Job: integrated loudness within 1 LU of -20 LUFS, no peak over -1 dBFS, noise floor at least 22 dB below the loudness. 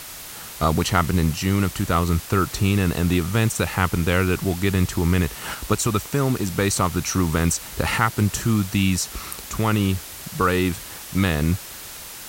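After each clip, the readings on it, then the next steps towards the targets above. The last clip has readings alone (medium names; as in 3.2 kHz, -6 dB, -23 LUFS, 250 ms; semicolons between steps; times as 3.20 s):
noise floor -37 dBFS; noise floor target -44 dBFS; loudness -22.0 LUFS; peak level -4.0 dBFS; loudness target -20.0 LUFS
-> noise print and reduce 7 dB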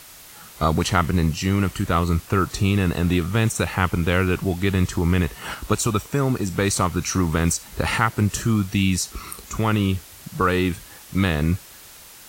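noise floor -44 dBFS; loudness -22.0 LUFS; peak level -4.0 dBFS; loudness target -20.0 LUFS
-> trim +2 dB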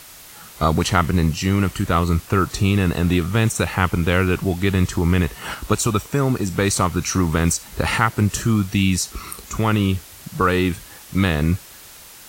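loudness -20.0 LUFS; peak level -2.0 dBFS; noise floor -42 dBFS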